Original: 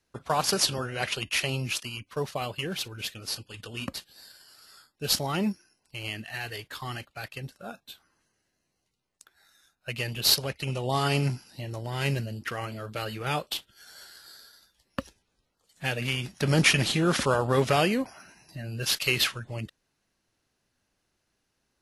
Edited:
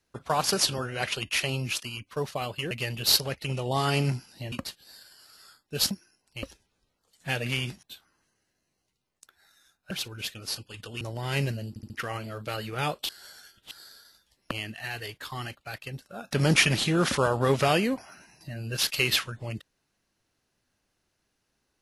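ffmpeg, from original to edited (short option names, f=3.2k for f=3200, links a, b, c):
-filter_complex "[0:a]asplit=15[a][b][c][d][e][f][g][h][i][j][k][l][m][n][o];[a]atrim=end=2.712[p];[b]atrim=start=9.888:end=11.702[q];[c]atrim=start=3.808:end=5.202[r];[d]atrim=start=5.488:end=6.012[s];[e]atrim=start=14.988:end=16.392[t];[f]atrim=start=7.808:end=9.892[u];[g]atrim=start=2.708:end=3.812[v];[h]atrim=start=11.698:end=12.452[w];[i]atrim=start=12.378:end=12.452[x];[j]atrim=start=12.378:end=12.452[y];[k]atrim=start=12.378:end=13.572[z];[l]atrim=start=13.568:end=14.192,asetpts=PTS-STARTPTS,areverse[aa];[m]atrim=start=14.188:end=14.992[ab];[n]atrim=start=6.008:end=7.812[ac];[o]atrim=start=16.388[ad];[p][q]acrossfade=d=0.004:c1=hsin:c2=hsin[ae];[ae][r]acrossfade=d=0.004:c1=hsin:c2=hsin[af];[af][s]acrossfade=d=0.004:c1=hsin:c2=hsin[ag];[ag][t]acrossfade=d=0.004:c1=hsin:c2=hsin[ah];[ah][u]acrossfade=d=0.004:c1=hsin:c2=hsin[ai];[ai][v]acrossfade=d=0.004:c1=hsin:c2=hsin[aj];[aj][w]acrossfade=d=0.004:c1=hsin:c2=hsin[ak];[ak][x]acrossfade=d=0.004:c1=hsin:c2=hsin[al];[al][y]acrossfade=d=0.004:c1=hsin:c2=hsin[am];[am][z]acrossfade=d=0.004:c1=hsin:c2=hsin[an];[an][aa]acrossfade=d=0.004:c1=hsin:c2=hsin[ao];[ao][ab]acrossfade=d=0.004:c1=hsin:c2=hsin[ap];[ap][ac]acrossfade=d=0.004:c1=hsin:c2=hsin[aq];[aq][ad]acrossfade=d=0.004:c1=hsin:c2=hsin"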